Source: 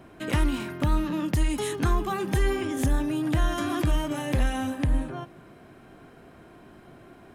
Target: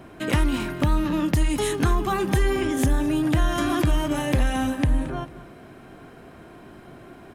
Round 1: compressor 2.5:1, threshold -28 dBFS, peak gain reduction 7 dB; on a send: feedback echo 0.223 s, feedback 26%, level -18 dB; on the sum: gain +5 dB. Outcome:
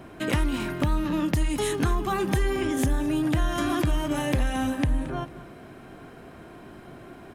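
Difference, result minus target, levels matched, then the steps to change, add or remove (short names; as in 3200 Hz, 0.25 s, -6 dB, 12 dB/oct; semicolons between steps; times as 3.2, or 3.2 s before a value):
compressor: peak gain reduction +3.5 dB
change: compressor 2.5:1, threshold -22 dBFS, peak gain reduction 3.5 dB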